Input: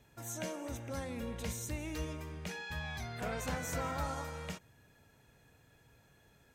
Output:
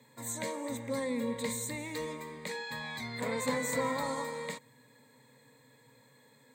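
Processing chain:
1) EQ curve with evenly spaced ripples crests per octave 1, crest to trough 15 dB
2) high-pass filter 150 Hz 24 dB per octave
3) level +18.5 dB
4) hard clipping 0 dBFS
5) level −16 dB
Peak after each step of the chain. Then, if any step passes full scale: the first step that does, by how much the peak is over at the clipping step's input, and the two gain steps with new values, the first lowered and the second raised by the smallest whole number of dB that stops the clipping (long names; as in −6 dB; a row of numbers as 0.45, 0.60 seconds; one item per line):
−20.5, −21.0, −2.5, −2.5, −18.5 dBFS
no step passes full scale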